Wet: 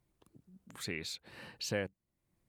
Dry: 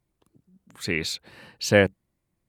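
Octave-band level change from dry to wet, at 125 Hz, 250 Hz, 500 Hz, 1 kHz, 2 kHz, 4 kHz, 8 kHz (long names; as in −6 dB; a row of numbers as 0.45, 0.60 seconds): −15.5, −16.0, −17.5, −16.0, −16.5, −11.0, −10.5 decibels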